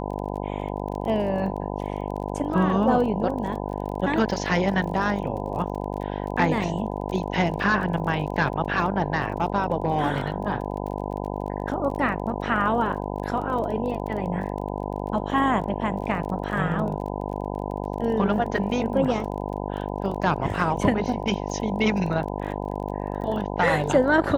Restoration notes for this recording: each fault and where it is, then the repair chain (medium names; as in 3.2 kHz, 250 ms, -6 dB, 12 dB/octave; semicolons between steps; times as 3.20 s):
buzz 50 Hz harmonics 20 -30 dBFS
crackle 27 per s -33 dBFS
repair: de-click; de-hum 50 Hz, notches 20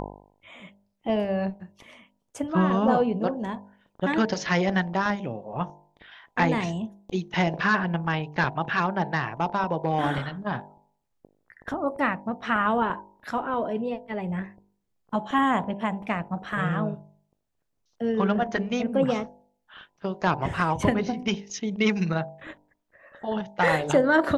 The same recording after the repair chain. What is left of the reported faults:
nothing left